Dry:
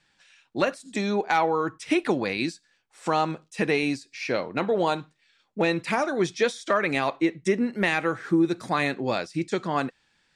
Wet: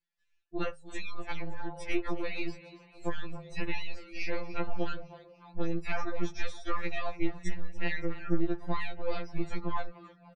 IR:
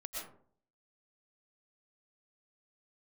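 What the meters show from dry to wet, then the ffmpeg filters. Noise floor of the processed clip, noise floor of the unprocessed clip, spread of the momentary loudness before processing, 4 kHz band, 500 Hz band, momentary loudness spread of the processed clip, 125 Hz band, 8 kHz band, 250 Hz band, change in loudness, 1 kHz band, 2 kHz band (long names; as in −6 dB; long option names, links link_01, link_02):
−68 dBFS, −69 dBFS, 6 LU, −11.0 dB, −12.5 dB, 9 LU, −6.5 dB, −13.0 dB, −10.5 dB, −11.5 dB, −13.0 dB, −10.5 dB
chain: -filter_complex "[0:a]aeval=exprs='if(lt(val(0),0),0.447*val(0),val(0))':channel_layout=same,afftdn=noise_reduction=26:noise_floor=-43,bandreject=frequency=158:width_type=h:width=4,bandreject=frequency=316:width_type=h:width=4,bandreject=frequency=474:width_type=h:width=4,acompressor=threshold=-36dB:ratio=2.5,asubboost=boost=4:cutoff=57,asplit=6[link_01][link_02][link_03][link_04][link_05][link_06];[link_02]adelay=285,afreqshift=44,volume=-16dB[link_07];[link_03]adelay=570,afreqshift=88,volume=-21.4dB[link_08];[link_04]adelay=855,afreqshift=132,volume=-26.7dB[link_09];[link_05]adelay=1140,afreqshift=176,volume=-32.1dB[link_10];[link_06]adelay=1425,afreqshift=220,volume=-37.4dB[link_11];[link_01][link_07][link_08][link_09][link_10][link_11]amix=inputs=6:normalize=0,afftfilt=real='re*2.83*eq(mod(b,8),0)':imag='im*2.83*eq(mod(b,8),0)':win_size=2048:overlap=0.75,volume=3dB"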